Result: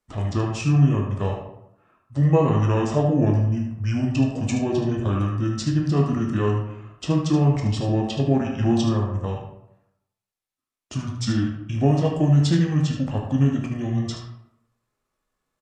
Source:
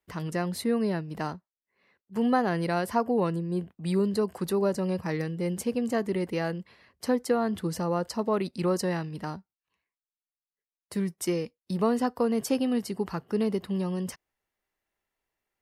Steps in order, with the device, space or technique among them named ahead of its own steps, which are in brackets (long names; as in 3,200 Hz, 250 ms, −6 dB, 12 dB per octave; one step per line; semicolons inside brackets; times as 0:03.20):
0:08.81–0:09.25: flat-topped bell 5,300 Hz −9.5 dB
monster voice (pitch shifter −8 semitones; low-shelf EQ 120 Hz +3.5 dB; single-tap delay 75 ms −9 dB; convolution reverb RT60 0.80 s, pre-delay 11 ms, DRR 0.5 dB)
level +3 dB